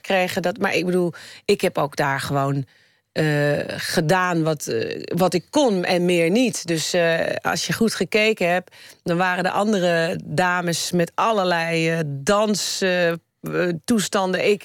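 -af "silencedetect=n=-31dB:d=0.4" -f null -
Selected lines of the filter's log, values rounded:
silence_start: 2.63
silence_end: 3.16 | silence_duration: 0.52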